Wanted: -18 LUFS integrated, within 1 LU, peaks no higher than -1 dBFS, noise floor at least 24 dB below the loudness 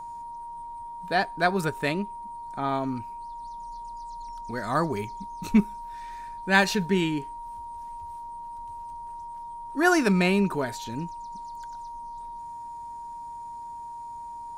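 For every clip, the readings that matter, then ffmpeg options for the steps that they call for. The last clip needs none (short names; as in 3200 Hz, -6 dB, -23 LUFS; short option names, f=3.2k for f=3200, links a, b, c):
steady tone 940 Hz; tone level -36 dBFS; loudness -29.5 LUFS; peak -6.0 dBFS; loudness target -18.0 LUFS
-> -af "bandreject=f=940:w=30"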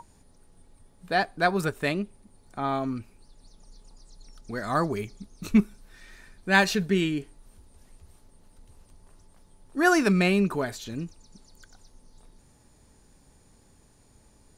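steady tone none; loudness -26.0 LUFS; peak -6.0 dBFS; loudness target -18.0 LUFS
-> -af "volume=8dB,alimiter=limit=-1dB:level=0:latency=1"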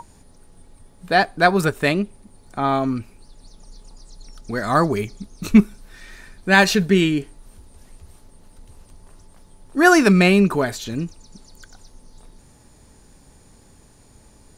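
loudness -18.5 LUFS; peak -1.0 dBFS; noise floor -51 dBFS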